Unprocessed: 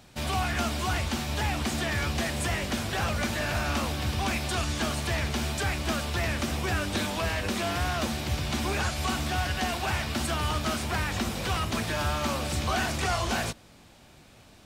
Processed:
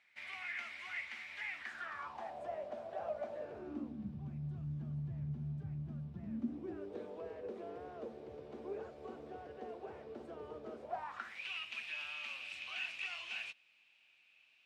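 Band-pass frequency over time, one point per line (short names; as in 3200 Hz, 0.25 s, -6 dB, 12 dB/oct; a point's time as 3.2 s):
band-pass, Q 8.4
1.55 s 2100 Hz
2.44 s 630 Hz
3.28 s 630 Hz
4.26 s 150 Hz
6.04 s 150 Hz
6.95 s 450 Hz
10.79 s 450 Hz
11.43 s 2600 Hz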